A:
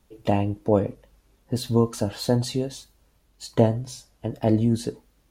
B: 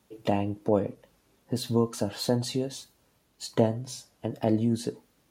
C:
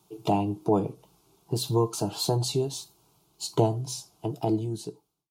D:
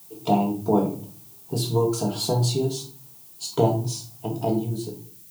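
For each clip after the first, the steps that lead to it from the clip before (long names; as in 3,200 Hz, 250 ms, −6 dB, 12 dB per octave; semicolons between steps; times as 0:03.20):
high-pass filter 120 Hz 12 dB per octave; in parallel at 0 dB: downward compressor, threshold −30 dBFS, peak gain reduction 17 dB; on the sum: level −5.5 dB
fade-out on the ending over 1.11 s; phaser with its sweep stopped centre 360 Hz, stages 8; level +5.5 dB
convolution reverb RT60 0.45 s, pre-delay 4 ms, DRR 1 dB; background noise violet −48 dBFS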